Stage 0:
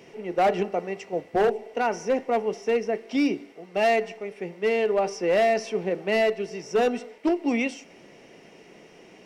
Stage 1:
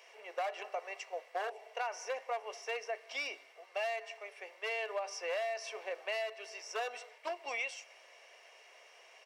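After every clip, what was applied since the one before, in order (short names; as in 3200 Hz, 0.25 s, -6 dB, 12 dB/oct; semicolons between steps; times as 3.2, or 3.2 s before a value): HPF 690 Hz 24 dB/oct; comb 1.8 ms, depth 33%; compressor 12:1, threshold -29 dBFS, peak gain reduction 10 dB; gain -4 dB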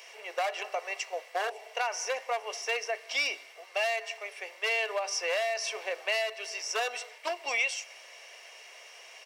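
high shelf 2300 Hz +9 dB; gain +4.5 dB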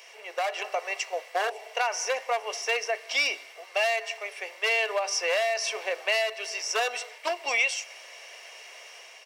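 AGC gain up to 4 dB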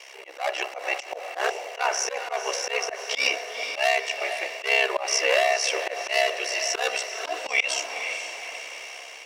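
ring modulator 33 Hz; diffused feedback echo 0.484 s, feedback 49%, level -10 dB; auto swell 0.107 s; gain +7.5 dB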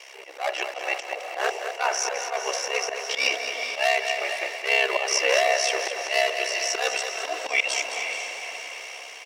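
feedback echo 0.213 s, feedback 42%, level -8.5 dB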